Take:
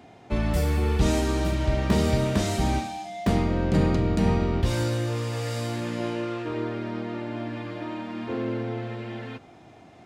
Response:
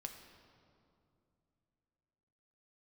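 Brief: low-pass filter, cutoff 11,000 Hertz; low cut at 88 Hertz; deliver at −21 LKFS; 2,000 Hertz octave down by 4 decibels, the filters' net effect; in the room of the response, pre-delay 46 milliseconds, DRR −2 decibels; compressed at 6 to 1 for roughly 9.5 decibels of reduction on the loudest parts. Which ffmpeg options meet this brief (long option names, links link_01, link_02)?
-filter_complex "[0:a]highpass=88,lowpass=11000,equalizer=frequency=2000:width_type=o:gain=-5,acompressor=threshold=-28dB:ratio=6,asplit=2[link_01][link_02];[1:a]atrim=start_sample=2205,adelay=46[link_03];[link_02][link_03]afir=irnorm=-1:irlink=0,volume=5.5dB[link_04];[link_01][link_04]amix=inputs=2:normalize=0,volume=7dB"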